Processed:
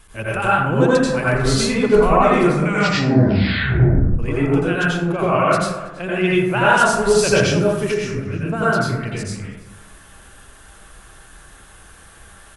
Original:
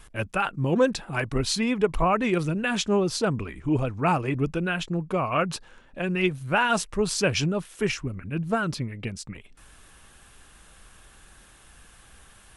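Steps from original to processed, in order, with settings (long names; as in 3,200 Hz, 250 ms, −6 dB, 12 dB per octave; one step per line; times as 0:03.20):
parametric band 10,000 Hz +2.5 dB 0.77 octaves
slap from a distant wall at 56 metres, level −18 dB
0:02.42: tape stop 1.77 s
dense smooth reverb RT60 0.92 s, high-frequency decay 0.4×, pre-delay 75 ms, DRR −8 dB
0:07.88–0:08.62: downward compressor 3 to 1, threshold −19 dBFS, peak gain reduction 6.5 dB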